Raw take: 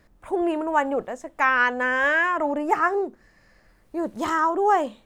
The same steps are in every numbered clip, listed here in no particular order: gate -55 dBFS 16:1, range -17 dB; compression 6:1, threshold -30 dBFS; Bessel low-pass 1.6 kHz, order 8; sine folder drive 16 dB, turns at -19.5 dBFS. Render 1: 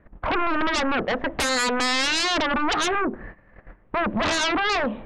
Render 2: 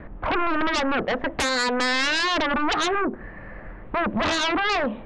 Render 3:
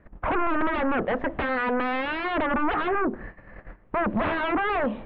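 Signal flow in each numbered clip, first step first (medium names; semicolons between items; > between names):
Bessel low-pass > gate > compression > sine folder; compression > Bessel low-pass > sine folder > gate; compression > gate > sine folder > Bessel low-pass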